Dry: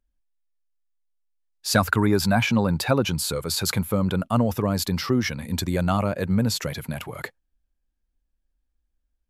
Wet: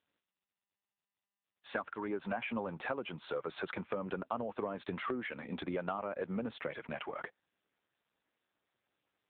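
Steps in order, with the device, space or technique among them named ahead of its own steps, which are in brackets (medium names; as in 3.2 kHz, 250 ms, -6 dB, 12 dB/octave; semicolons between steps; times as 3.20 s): voicemail (band-pass 370–2600 Hz; compression 10:1, threshold -31 dBFS, peak gain reduction 16 dB; trim -1 dB; AMR-NB 6.7 kbps 8 kHz)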